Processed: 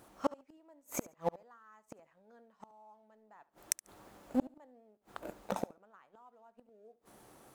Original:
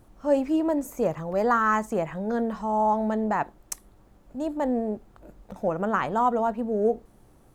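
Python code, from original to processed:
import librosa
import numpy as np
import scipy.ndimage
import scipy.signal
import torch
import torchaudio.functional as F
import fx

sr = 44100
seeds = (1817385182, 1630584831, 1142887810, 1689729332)

y = fx.highpass(x, sr, hz=600.0, slope=6)
y = fx.rider(y, sr, range_db=4, speed_s=0.5)
y = fx.leveller(y, sr, passes=1)
y = fx.gate_flip(y, sr, shuts_db=-24.0, range_db=-42)
y = fx.echo_feedback(y, sr, ms=71, feedback_pct=18, wet_db=-19)
y = y * librosa.db_to_amplitude(6.0)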